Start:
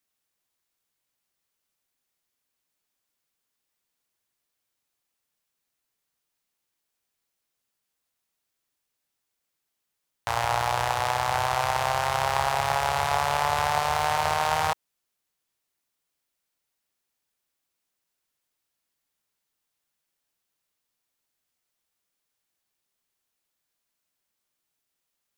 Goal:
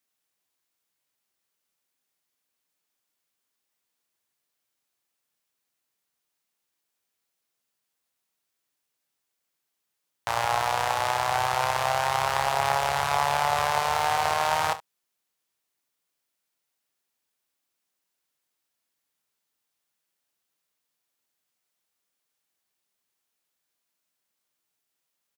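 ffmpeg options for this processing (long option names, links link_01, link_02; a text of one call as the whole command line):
ffmpeg -i in.wav -af "highpass=frequency=130:poles=1,aecho=1:1:29|70:0.237|0.141" out.wav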